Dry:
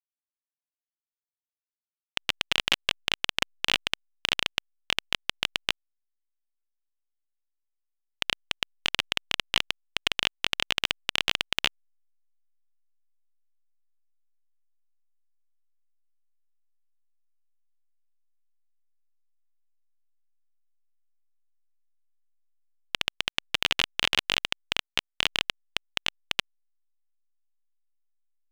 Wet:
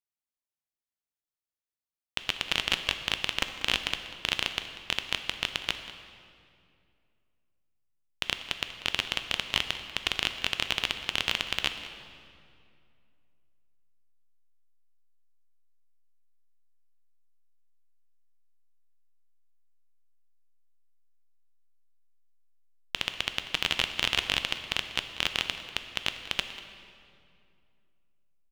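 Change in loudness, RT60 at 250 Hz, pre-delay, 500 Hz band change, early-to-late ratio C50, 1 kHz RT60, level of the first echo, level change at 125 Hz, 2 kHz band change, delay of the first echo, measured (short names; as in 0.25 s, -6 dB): -2.0 dB, 2.9 s, 8 ms, -1.5 dB, 8.5 dB, 2.3 s, -16.5 dB, +1.0 dB, -2.0 dB, 0.191 s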